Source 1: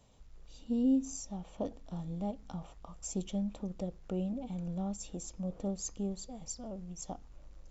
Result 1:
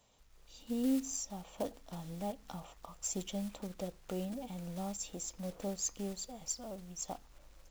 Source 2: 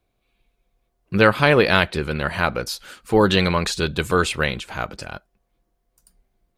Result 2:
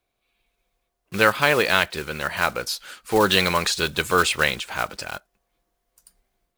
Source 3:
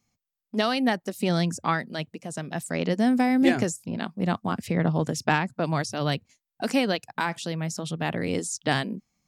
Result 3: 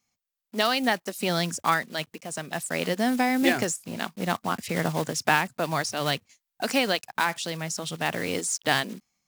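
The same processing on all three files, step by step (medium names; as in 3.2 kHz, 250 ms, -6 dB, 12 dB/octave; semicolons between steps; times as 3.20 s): block-companded coder 5-bit; bass shelf 420 Hz -11 dB; level rider gain up to 4 dB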